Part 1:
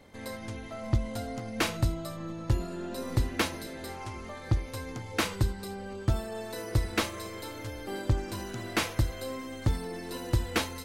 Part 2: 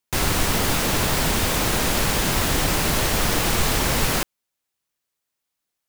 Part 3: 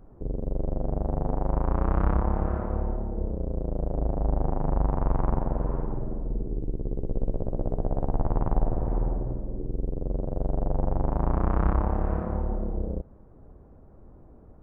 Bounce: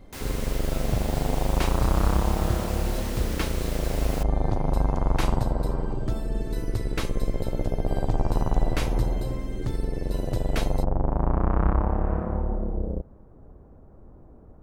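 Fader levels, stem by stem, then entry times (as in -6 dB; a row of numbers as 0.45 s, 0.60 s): -4.0 dB, -16.0 dB, +1.5 dB; 0.00 s, 0.00 s, 0.00 s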